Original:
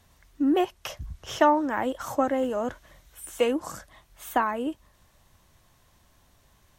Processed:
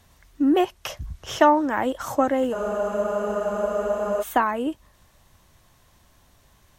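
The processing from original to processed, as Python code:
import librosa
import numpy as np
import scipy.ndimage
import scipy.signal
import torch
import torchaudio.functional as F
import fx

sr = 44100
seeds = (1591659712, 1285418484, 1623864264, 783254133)

y = fx.spec_freeze(x, sr, seeds[0], at_s=2.55, hold_s=1.67)
y = y * librosa.db_to_amplitude(3.5)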